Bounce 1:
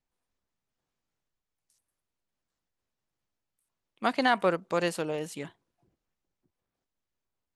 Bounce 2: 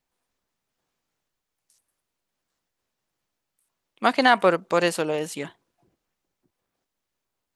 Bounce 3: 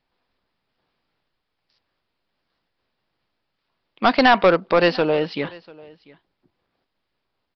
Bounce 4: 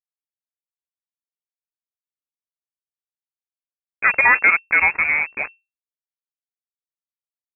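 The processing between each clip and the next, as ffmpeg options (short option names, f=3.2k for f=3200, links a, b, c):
-af "lowshelf=f=170:g=-7.5,volume=7.5dB"
-af "aresample=11025,asoftclip=type=tanh:threshold=-14dB,aresample=44100,aecho=1:1:693:0.0668,volume=7dB"
-af "aresample=11025,acrusher=bits=3:mix=0:aa=0.5,aresample=44100,lowpass=f=2.3k:t=q:w=0.5098,lowpass=f=2.3k:t=q:w=0.6013,lowpass=f=2.3k:t=q:w=0.9,lowpass=f=2.3k:t=q:w=2.563,afreqshift=-2700"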